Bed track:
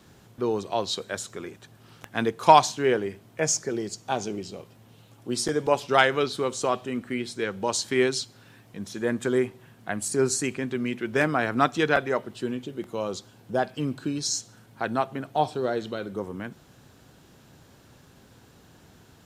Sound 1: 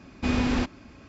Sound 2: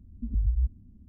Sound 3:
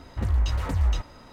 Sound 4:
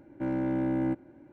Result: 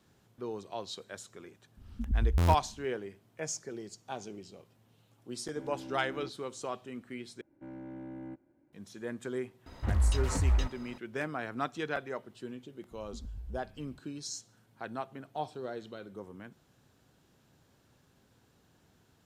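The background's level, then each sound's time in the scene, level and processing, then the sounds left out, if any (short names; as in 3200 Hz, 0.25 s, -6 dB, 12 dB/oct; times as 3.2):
bed track -12.5 dB
1.77 add 2 -2 dB + stuck buffer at 0.6, times 14
5.35 add 4 -16 dB
7.41 replace with 4 -15.5 dB
9.66 add 3 -3.5 dB
12.91 add 2 -5 dB + compressor, threshold -35 dBFS
not used: 1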